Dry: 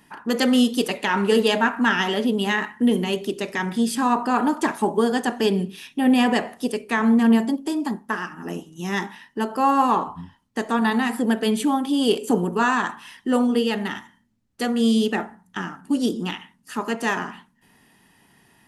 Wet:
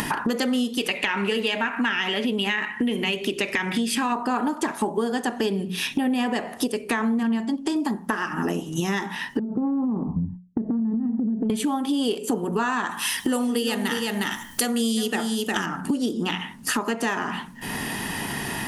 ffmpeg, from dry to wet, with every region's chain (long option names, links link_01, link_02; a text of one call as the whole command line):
ffmpeg -i in.wav -filter_complex "[0:a]asettb=1/sr,asplit=3[link_01][link_02][link_03];[link_01]atrim=end=0.774[link_04];[link_02]atrim=start=0.77:end=4.12,asetpts=PTS-STARTPTS,afade=type=in:duration=0.004:curve=qsin,afade=type=out:start_time=3.346:duration=0.004:curve=qsin,equalizer=frequency=2400:width=1.5:gain=12,acompressor=threshold=-21dB:ratio=1.5:attack=3.2:release=140:knee=1:detection=peak[link_05];[link_03]atrim=start=4.116[link_06];[link_04][link_05]acrossfade=duration=0.004:curve1=hsin:curve2=qsin[link_07];[link_07][link_06]acrossfade=duration=0.004:curve1=qsin:curve2=hsin,asettb=1/sr,asplit=3[link_08][link_09][link_10];[link_08]atrim=end=7.234[link_11];[link_09]atrim=start=7.23:end=7.76,asetpts=PTS-STARTPTS,afade=type=in:duration=0.004:curve=qsin,afade=type=out:start_time=0.526:duration=0.004:curve=qsin,lowpass=7500,equalizer=frequency=490:width_type=o:width=0.88:gain=-7[link_12];[link_10]atrim=start=7.756[link_13];[link_11][link_12]acrossfade=duration=0.004:curve1=hsin:curve2=qsin[link_14];[link_14][link_13]acrossfade=duration=0.004:curve1=qsin:curve2=hsin,asettb=1/sr,asplit=3[link_15][link_16][link_17];[link_15]atrim=end=9.394[link_18];[link_16]atrim=start=9.39:end=11.5,asetpts=PTS-STARTPTS,afade=type=in:duration=0.004:curve=qsin,afade=type=out:start_time=2.106:duration=0.004:curve=qsin,lowpass=frequency=200:width_type=q:width=1.5,acompressor=threshold=-29dB:ratio=6:attack=3.2:release=140:knee=1:detection=peak,agate=range=-33dB:threshold=-56dB:ratio=3:release=100:detection=peak[link_19];[link_17]atrim=start=11.496[link_20];[link_18][link_19]acrossfade=duration=0.004:curve1=hsin:curve2=qsin[link_21];[link_21][link_20]acrossfade=duration=0.004:curve1=qsin:curve2=hsin,asettb=1/sr,asplit=3[link_22][link_23][link_24];[link_22]atrim=end=12.914[link_25];[link_23]atrim=start=12.91:end=15.66,asetpts=PTS-STARTPTS,afade=type=in:duration=0.004:curve=qsin,afade=type=out:start_time=2.746:duration=0.004:curve=qsin,aemphasis=mode=production:type=75kf,aecho=1:1:359:0.282,atrim=end_sample=121275[link_26];[link_24]atrim=start=15.656[link_27];[link_25][link_26]acrossfade=duration=0.004:curve1=hsin:curve2=qsin[link_28];[link_28][link_27]acrossfade=duration=0.004:curve1=qsin:curve2=hsin,acompressor=mode=upward:threshold=-20dB:ratio=2.5,bandreject=frequency=60:width_type=h:width=6,bandreject=frequency=120:width_type=h:width=6,bandreject=frequency=180:width_type=h:width=6,acompressor=threshold=-30dB:ratio=6,volume=8dB" out.wav